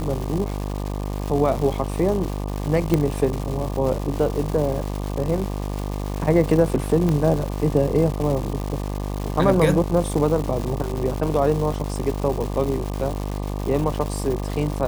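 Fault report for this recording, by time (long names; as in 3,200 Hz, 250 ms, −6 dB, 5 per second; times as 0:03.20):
mains buzz 50 Hz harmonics 24 −27 dBFS
surface crackle 390 per second −27 dBFS
0:02.94: click −7 dBFS
0:07.09: click −11 dBFS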